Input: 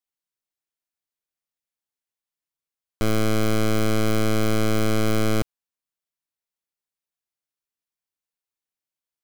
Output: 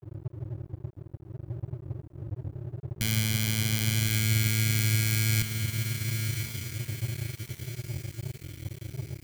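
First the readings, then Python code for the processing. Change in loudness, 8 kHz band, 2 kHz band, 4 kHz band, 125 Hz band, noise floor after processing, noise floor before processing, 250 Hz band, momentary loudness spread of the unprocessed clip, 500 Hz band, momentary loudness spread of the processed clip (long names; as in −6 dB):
−6.0 dB, +5.0 dB, 0.0 dB, +2.0 dB, +2.5 dB, −52 dBFS, below −85 dBFS, −10.0 dB, 4 LU, −18.5 dB, 16 LU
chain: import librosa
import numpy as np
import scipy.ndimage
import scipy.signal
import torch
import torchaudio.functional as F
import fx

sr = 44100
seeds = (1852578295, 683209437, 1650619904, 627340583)

p1 = fx.dmg_noise_band(x, sr, seeds[0], low_hz=86.0, high_hz=140.0, level_db=-38.0)
p2 = scipy.signal.sosfilt(scipy.signal.cheby1(2, 1.0, [140.0, 2200.0], 'bandstop', fs=sr, output='sos'), p1)
p3 = fx.peak_eq(p2, sr, hz=750.0, db=-4.5, octaves=2.9)
p4 = fx.notch_comb(p3, sr, f0_hz=1300.0)
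p5 = fx.rider(p4, sr, range_db=4, speed_s=0.5)
p6 = p4 + F.gain(torch.from_numpy(p5), 1.5).numpy()
p7 = fx.high_shelf(p6, sr, hz=12000.0, db=6.0)
p8 = fx.echo_diffused(p7, sr, ms=1117, feedback_pct=51, wet_db=-5.0)
y = np.sign(p8) * np.maximum(np.abs(p8) - 10.0 ** (-36.0 / 20.0), 0.0)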